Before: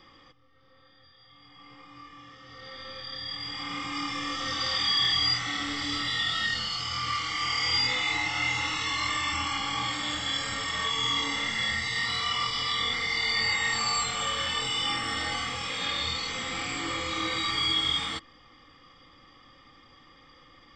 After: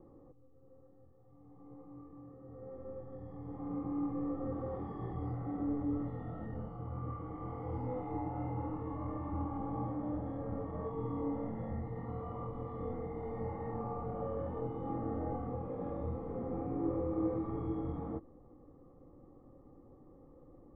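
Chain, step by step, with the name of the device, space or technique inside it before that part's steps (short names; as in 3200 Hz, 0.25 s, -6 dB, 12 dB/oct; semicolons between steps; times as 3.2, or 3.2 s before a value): under water (LPF 680 Hz 24 dB/oct; bell 390 Hz +5 dB 0.42 oct); gain +2 dB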